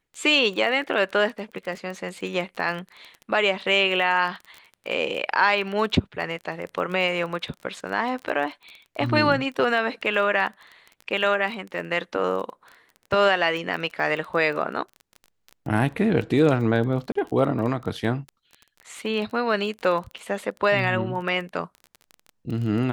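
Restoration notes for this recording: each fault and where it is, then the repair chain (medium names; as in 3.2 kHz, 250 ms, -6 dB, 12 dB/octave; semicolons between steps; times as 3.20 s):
crackle 22 per s -31 dBFS
17.12–17.15 s: dropout 34 ms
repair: de-click; interpolate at 17.12 s, 34 ms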